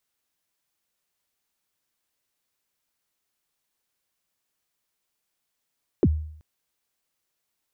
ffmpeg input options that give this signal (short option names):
-f lavfi -i "aevalsrc='0.237*pow(10,-3*t/0.64)*sin(2*PI*(460*0.047/log(77/460)*(exp(log(77/460)*min(t,0.047)/0.047)-1)+77*max(t-0.047,0)))':d=0.38:s=44100"